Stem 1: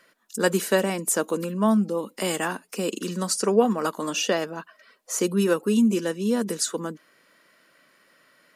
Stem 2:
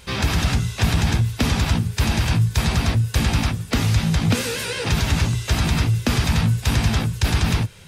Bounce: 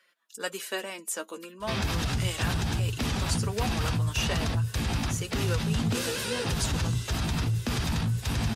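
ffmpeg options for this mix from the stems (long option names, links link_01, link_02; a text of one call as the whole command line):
ffmpeg -i stem1.wav -i stem2.wav -filter_complex "[0:a]highpass=frequency=620:poles=1,equalizer=frequency=2900:width=1.1:gain=6,flanger=delay=5.3:depth=4.3:regen=35:speed=0.42:shape=triangular,volume=-5dB[link_01];[1:a]adynamicequalizer=threshold=0.00562:dfrequency=2200:dqfactor=3.1:tfrequency=2200:tqfactor=3.1:attack=5:release=100:ratio=0.375:range=3:mode=cutabove:tftype=bell,alimiter=limit=-16dB:level=0:latency=1:release=25,flanger=delay=2.3:depth=9.4:regen=84:speed=2:shape=sinusoidal,adelay=1600,volume=0dB[link_02];[link_01][link_02]amix=inputs=2:normalize=0" out.wav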